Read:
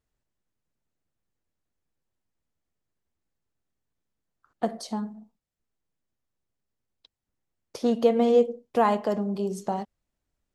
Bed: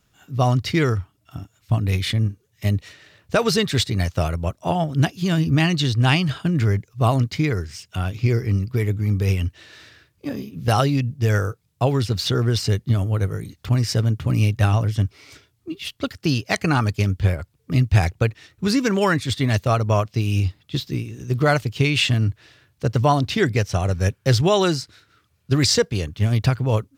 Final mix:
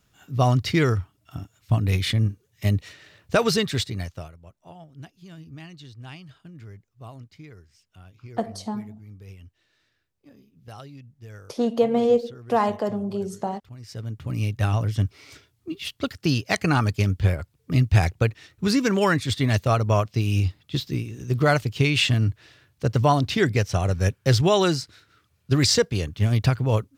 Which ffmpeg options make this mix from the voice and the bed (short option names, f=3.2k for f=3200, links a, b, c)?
-filter_complex "[0:a]adelay=3750,volume=0.5dB[a];[1:a]volume=21dB,afade=t=out:st=3.4:d=0.93:silence=0.0749894,afade=t=in:st=13.78:d=1.35:silence=0.0794328[b];[a][b]amix=inputs=2:normalize=0"